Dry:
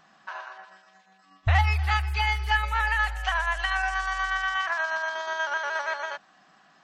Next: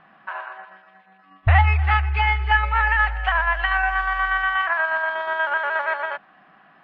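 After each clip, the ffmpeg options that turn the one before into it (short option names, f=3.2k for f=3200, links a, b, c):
-af "lowpass=f=2.7k:w=0.5412,lowpass=f=2.7k:w=1.3066,volume=6dB"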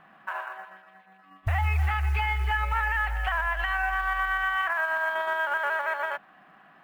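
-af "alimiter=limit=-16dB:level=0:latency=1:release=84,acrusher=bits=8:mode=log:mix=0:aa=0.000001,volume=-2dB"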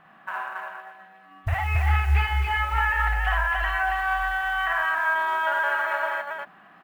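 -af "aecho=1:1:55.39|277:0.794|0.708"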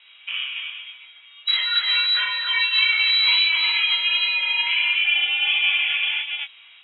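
-af "flanger=delay=18:depth=3.8:speed=1.5,lowpass=f=3.4k:t=q:w=0.5098,lowpass=f=3.4k:t=q:w=0.6013,lowpass=f=3.4k:t=q:w=0.9,lowpass=f=3.4k:t=q:w=2.563,afreqshift=-4000,volume=6.5dB"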